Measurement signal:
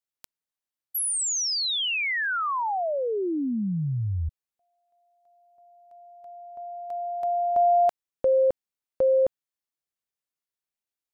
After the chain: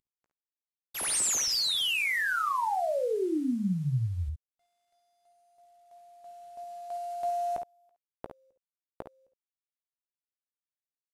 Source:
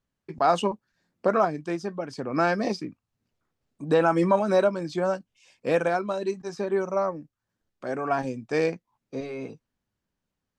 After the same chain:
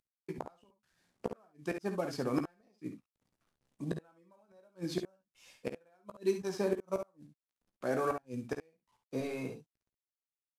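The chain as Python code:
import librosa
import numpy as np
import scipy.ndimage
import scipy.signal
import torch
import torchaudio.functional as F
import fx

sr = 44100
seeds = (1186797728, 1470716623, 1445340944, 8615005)

y = fx.cvsd(x, sr, bps=64000)
y = fx.gate_flip(y, sr, shuts_db=-18.0, range_db=-40)
y = fx.room_early_taps(y, sr, ms=(16, 54, 68), db=(-10.0, -11.5, -9.0))
y = y * librosa.db_to_amplitude(-3.0)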